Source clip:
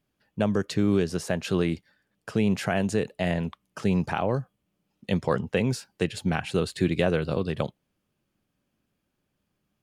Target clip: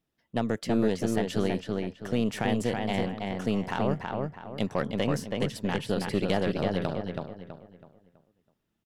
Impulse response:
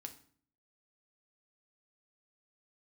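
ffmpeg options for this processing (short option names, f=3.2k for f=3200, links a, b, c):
-filter_complex "[0:a]aeval=exprs='0.299*(cos(1*acos(clip(val(0)/0.299,-1,1)))-cos(1*PI/2))+0.0335*(cos(4*acos(clip(val(0)/0.299,-1,1)))-cos(4*PI/2))':c=same,asplit=2[a][b];[b]adelay=362,lowpass=f=2.9k:p=1,volume=-3dB,asplit=2[c][d];[d]adelay=362,lowpass=f=2.9k:p=1,volume=0.36,asplit=2[e][f];[f]adelay=362,lowpass=f=2.9k:p=1,volume=0.36,asplit=2[g][h];[h]adelay=362,lowpass=f=2.9k:p=1,volume=0.36,asplit=2[i][j];[j]adelay=362,lowpass=f=2.9k:p=1,volume=0.36[k];[a][c][e][g][i][k]amix=inputs=6:normalize=0,asetrate=48951,aresample=44100,volume=-4.5dB"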